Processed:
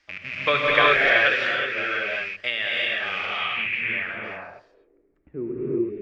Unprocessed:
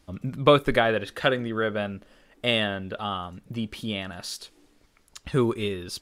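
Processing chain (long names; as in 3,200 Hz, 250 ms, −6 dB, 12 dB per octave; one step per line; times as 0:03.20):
loose part that buzzes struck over −40 dBFS, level −25 dBFS
three-way crossover with the lows and the highs turned down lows −17 dB, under 310 Hz, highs −18 dB, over 7,900 Hz
mains-hum notches 50/100/150/200 Hz
reverb whose tail is shaped and stops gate 400 ms rising, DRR −6 dB
low-pass filter sweep 4,900 Hz → 310 Hz, 0:03.30–0:05.20
octave-band graphic EQ 250/500/1,000/2,000/4,000 Hz −8/−6/−7/+10/−11 dB
0:01.50–0:03.59: downward compressor, threshold −22 dBFS, peak gain reduction 8 dB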